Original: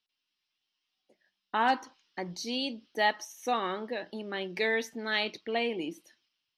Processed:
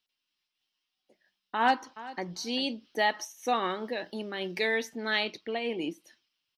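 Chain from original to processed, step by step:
0:01.57–0:02.25: delay throw 390 ms, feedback 10%, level −16 dB
0:03.70–0:04.78: high-shelf EQ 5,600 Hz +8 dB
amplitude modulation by smooth noise, depth 65%
level +4 dB

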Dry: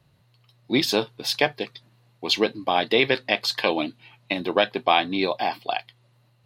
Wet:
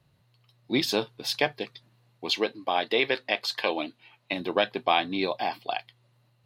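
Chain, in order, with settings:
0:02.30–0:04.33: bass and treble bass −9 dB, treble −2 dB
level −4 dB

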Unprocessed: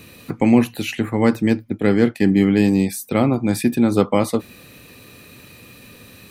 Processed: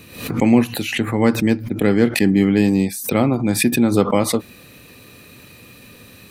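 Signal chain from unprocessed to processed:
background raised ahead of every attack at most 100 dB per second

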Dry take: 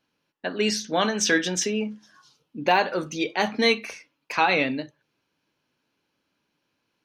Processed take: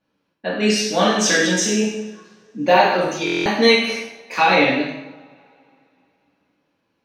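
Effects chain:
coupled-rooms reverb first 0.9 s, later 3.1 s, from −24 dB, DRR −6.5 dB
buffer that repeats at 0:03.25, samples 1,024, times 8
one half of a high-frequency compander decoder only
level −1 dB

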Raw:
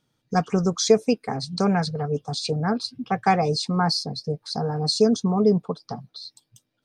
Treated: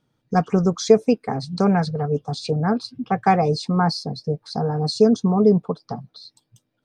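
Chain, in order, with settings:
high-shelf EQ 2,400 Hz −9.5 dB
level +3.5 dB

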